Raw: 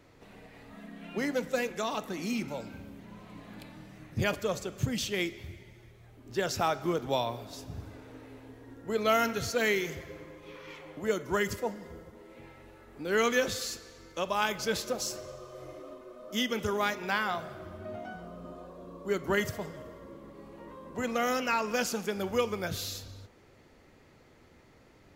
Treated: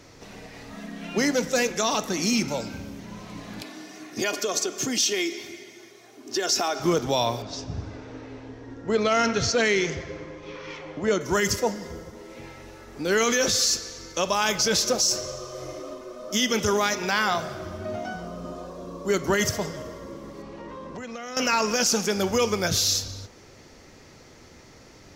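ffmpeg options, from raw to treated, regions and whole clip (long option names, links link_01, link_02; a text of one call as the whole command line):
ffmpeg -i in.wav -filter_complex "[0:a]asettb=1/sr,asplit=3[link_01][link_02][link_03];[link_01]atrim=end=3.624[link_04];[link_02]atrim=start=3.62:end=6.8,asetpts=PTS-STARTPTS,afade=type=in:duration=0.004:curve=qsin,afade=type=out:start_time=3.176:duration=0.004:curve=qsin,highpass=frequency=210:width=0.5412,highpass=frequency=210:width=1.3066,aecho=1:1:2.8:0.54,atrim=end_sample=140238,acompressor=threshold=-32dB:ratio=4:attack=3.2:release=140:knee=1:detection=peak[link_05];[link_03]atrim=start=6.796[link_06];[link_04][link_05]acrossfade=duration=0.004:curve1=hsin:curve2=qsin[link_07];[link_07][link_06]acrossfade=duration=0.004:curve1=qsin:curve2=hsin,asettb=1/sr,asplit=3[link_08][link_09][link_10];[link_08]atrim=end=7.424[link_11];[link_09]atrim=start=7.42:end=11.21,asetpts=PTS-STARTPTS,afade=type=in:duration=0.004:curve=qsin,afade=type=out:start_time=3.786:duration=0.004:curve=qsin,lowpass=frequency=9200:width=0.5412,lowpass=frequency=9200:width=1.3066,adynamicsmooth=sensitivity=1.5:basefreq=4500[link_12];[link_10]atrim=start=11.206[link_13];[link_11][link_12]acrossfade=duration=0.004:curve1=hsin:curve2=qsin[link_14];[link_14][link_13]acrossfade=duration=0.004:curve1=qsin:curve2=hsin,asettb=1/sr,asplit=3[link_15][link_16][link_17];[link_15]atrim=end=20.424[link_18];[link_16]atrim=start=20.42:end=21.37,asetpts=PTS-STARTPTS,afade=type=in:duration=0.004:curve=qsin,afade=type=out:start_time=0.946:duration=0.004:curve=qsin,lowpass=3200,aemphasis=mode=production:type=50fm,acompressor=threshold=-42dB:ratio=10:attack=3.2:release=140:knee=1:detection=peak[link_19];[link_17]atrim=start=21.366[link_20];[link_18][link_19]acrossfade=duration=0.004:curve1=hsin:curve2=qsin[link_21];[link_21][link_20]acrossfade=duration=0.004:curve1=qsin:curve2=hsin,equalizer=frequency=5700:width_type=o:width=0.74:gain=12.5,alimiter=limit=-21.5dB:level=0:latency=1:release=14,volume=8.5dB" out.wav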